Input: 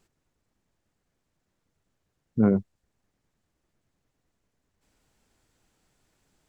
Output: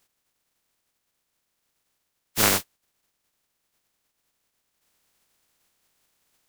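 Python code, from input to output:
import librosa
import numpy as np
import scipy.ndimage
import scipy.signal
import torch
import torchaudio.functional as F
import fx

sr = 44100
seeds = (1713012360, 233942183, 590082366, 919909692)

y = fx.spec_flatten(x, sr, power=0.14)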